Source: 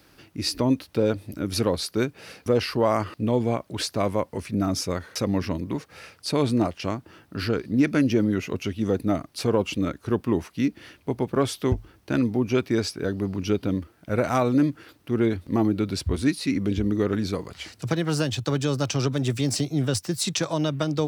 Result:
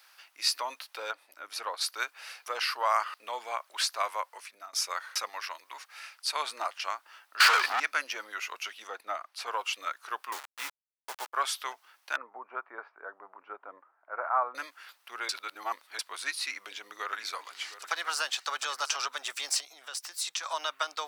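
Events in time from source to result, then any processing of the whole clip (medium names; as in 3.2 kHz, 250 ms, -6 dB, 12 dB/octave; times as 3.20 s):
1.11–1.81 s: treble shelf 2.2 kHz -10 dB
4.04–4.73 s: fade out equal-power, to -20 dB
5.29–6.36 s: bass shelf 350 Hz -11.5 dB
7.40–7.80 s: overdrive pedal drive 36 dB, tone 4.4 kHz, clips at -11 dBFS
8.87–9.47 s: treble shelf 3.8 kHz -10.5 dB
10.32–11.33 s: send-on-delta sampling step -30 dBFS
12.16–14.55 s: low-pass 1.3 kHz 24 dB/octave
15.29–15.99 s: reverse
16.49–18.96 s: delay 715 ms -12.5 dB
19.58–20.45 s: compression 2.5:1, threshold -31 dBFS
whole clip: high-pass 860 Hz 24 dB/octave; dynamic bell 1.3 kHz, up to +4 dB, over -46 dBFS, Q 2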